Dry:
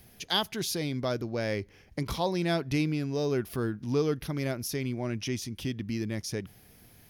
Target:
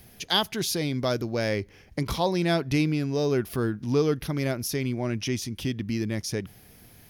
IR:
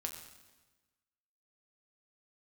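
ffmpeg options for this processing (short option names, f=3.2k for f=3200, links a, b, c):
-filter_complex "[0:a]asettb=1/sr,asplit=3[a][b][c];[a]atrim=end=1.004[d];[b]atrim=start=1:end=1.49,asetpts=PTS-STARTPTS,afade=t=in:d=0.004:c=qsin,afade=t=out:st=0.486:d=0.004:c=qsin,highshelf=f=4.6k:g=5.5[e];[c]atrim=start=1.486[f];[d][e]acrossfade=d=0.004:c1=hsin:c2=qsin[g];[g][f]acrossfade=d=0.004:c1=qsin:c2=hsin,volume=4dB"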